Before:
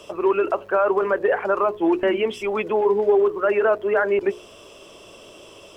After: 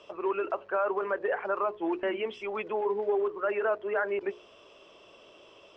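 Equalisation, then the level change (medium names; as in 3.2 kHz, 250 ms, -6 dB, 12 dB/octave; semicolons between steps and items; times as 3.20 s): distance through air 170 m; bass shelf 190 Hz -4.5 dB; bass shelf 440 Hz -6.5 dB; -6.0 dB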